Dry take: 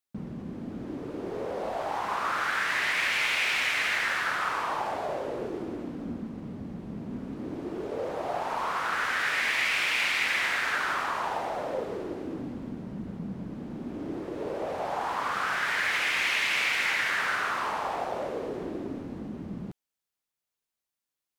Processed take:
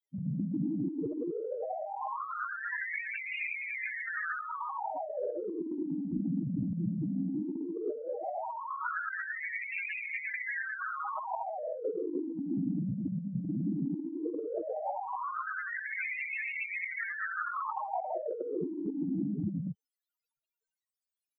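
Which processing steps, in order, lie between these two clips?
loudest bins only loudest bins 4; comb 6.4 ms, depth 100%; negative-ratio compressor -41 dBFS, ratio -1; gain +5 dB

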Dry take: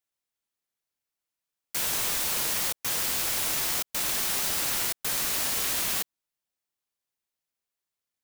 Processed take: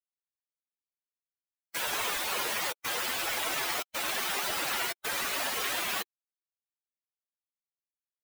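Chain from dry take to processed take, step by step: per-bin expansion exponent 2; tone controls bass -14 dB, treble -12 dB; in parallel at -10.5 dB: wrapped overs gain 40.5 dB; on the sum: gain +8.5 dB

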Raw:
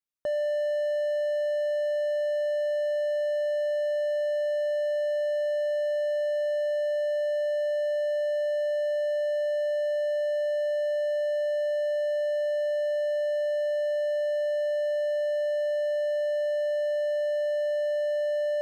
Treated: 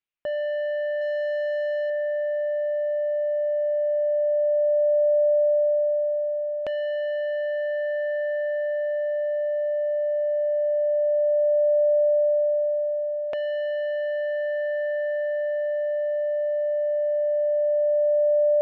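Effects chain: LFO low-pass saw down 0.15 Hz 410–2800 Hz; 1.01–1.9 overdrive pedal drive 12 dB, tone 1400 Hz, clips at -21 dBFS

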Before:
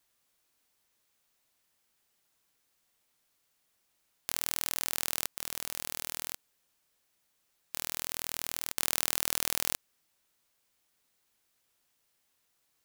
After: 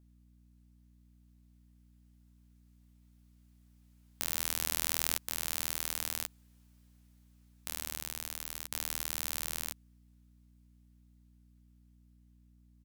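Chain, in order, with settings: Doppler pass-by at 5.77, 7 m/s, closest 9.6 m; hum 60 Hz, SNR 20 dB; doubler 12 ms -12.5 dB; gain +2.5 dB

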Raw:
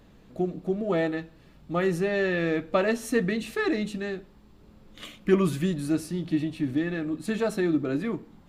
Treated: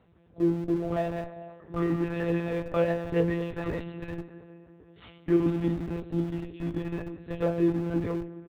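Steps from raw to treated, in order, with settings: metallic resonator 90 Hz, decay 0.32 s, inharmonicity 0.002; echo 0.106 s -15 dB; on a send at -12 dB: reverb RT60 3.5 s, pre-delay 0.12 s; on the sum: monotone LPC vocoder at 8 kHz 170 Hz; HPF 52 Hz 24 dB/oct; in parallel at -8 dB: Schmitt trigger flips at -38.5 dBFS; on the sum: high shelf 3000 Hz -11.5 dB; doubler 18 ms -12.5 dB; gain +5 dB

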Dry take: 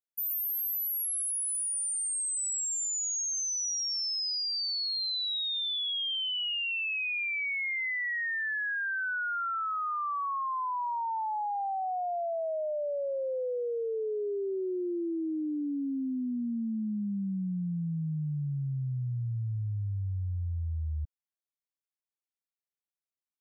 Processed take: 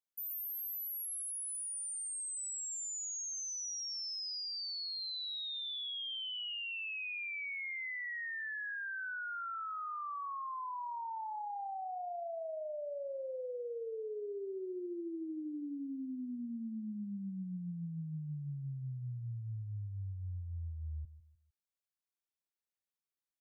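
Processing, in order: limiter -34.5 dBFS, peak gain reduction 5.5 dB; on a send: feedback echo 0.152 s, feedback 35%, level -15 dB; on the sum: gain -3.5 dB

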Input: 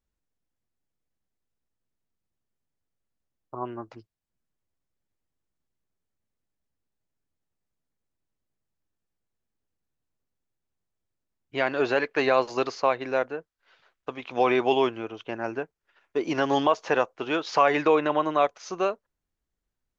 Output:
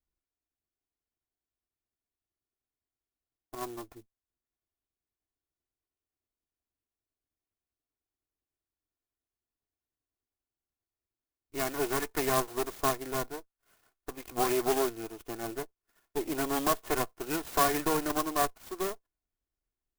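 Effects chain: minimum comb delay 2.8 ms; clock jitter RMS 0.079 ms; gain -5 dB

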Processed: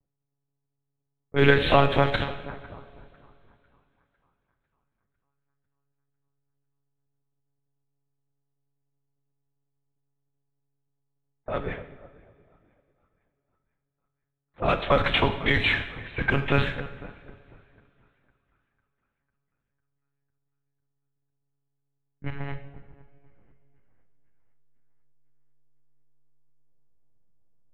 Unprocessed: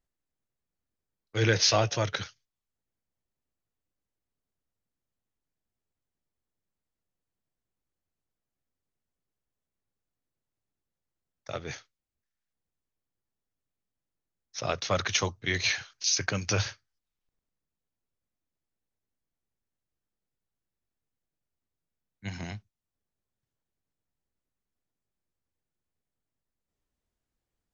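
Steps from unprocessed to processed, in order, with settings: high shelf 2900 Hz -4 dB; split-band echo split 1100 Hz, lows 0.245 s, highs 0.5 s, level -14 dB; monotone LPC vocoder at 8 kHz 140 Hz; in parallel at -7.5 dB: backlash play -41.5 dBFS; on the sum: low-pass opened by the level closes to 710 Hz, open at -22.5 dBFS; two-slope reverb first 0.8 s, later 3 s, from -18 dB, DRR 8 dB; gain +4.5 dB

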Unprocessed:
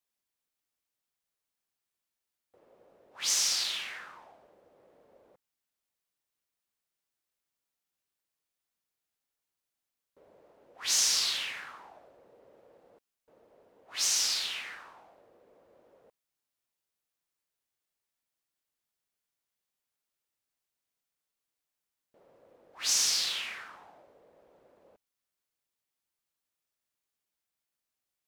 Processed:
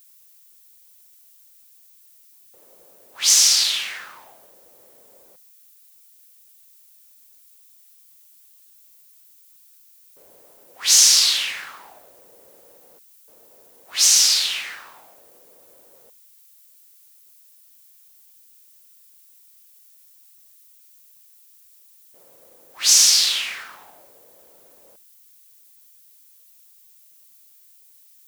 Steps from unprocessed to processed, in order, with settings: high shelf 2400 Hz +10.5 dB; added noise violet -57 dBFS; gain +4.5 dB

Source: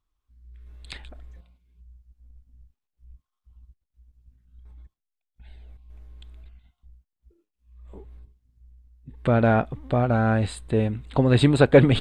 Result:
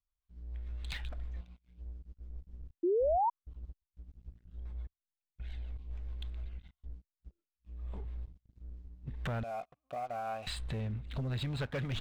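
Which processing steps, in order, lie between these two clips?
9.43–10.47 vowel filter a; rotary speaker horn 7 Hz, later 0.75 Hz, at 8.29; compressor 2.5:1, threshold -40 dBFS, peak gain reduction 19 dB; LPF 4800 Hz 12 dB/oct; bell 360 Hz -13 dB 1.2 oct; sample leveller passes 3; 2.83–3.3 painted sound rise 330–980 Hz -24 dBFS; gain -4.5 dB

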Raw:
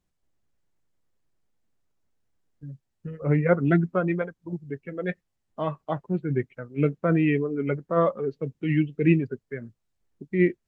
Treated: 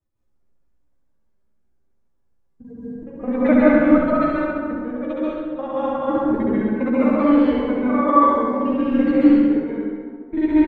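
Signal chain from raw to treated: local time reversal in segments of 42 ms; bell 2800 Hz -3.5 dB 1.3 oct; reverb removal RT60 0.9 s; transient shaper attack +2 dB, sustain -4 dB; formant-preserving pitch shift +9.5 st; doubler 13 ms -6.5 dB; feedback echo 68 ms, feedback 53%, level -4 dB; plate-style reverb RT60 1.9 s, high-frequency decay 0.6×, pre-delay 0.12 s, DRR -8.5 dB; mismatched tape noise reduction decoder only; gain -2 dB

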